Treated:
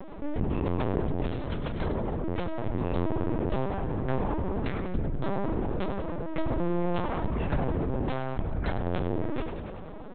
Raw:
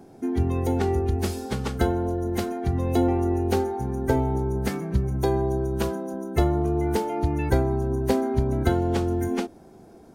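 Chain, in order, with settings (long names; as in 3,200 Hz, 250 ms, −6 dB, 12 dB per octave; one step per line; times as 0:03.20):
0:06.59–0:07.07: comb filter 6 ms, depth 95%
0:08.08–0:08.87: parametric band 300 Hz −11 dB 1.3 octaves
half-wave rectification
0:01.47–0:02.24: ring modulation 57 Hz
echo with shifted repeats 97 ms, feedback 50%, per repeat +53 Hz, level −12 dB
linear-prediction vocoder at 8 kHz pitch kept
envelope flattener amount 50%
level −5 dB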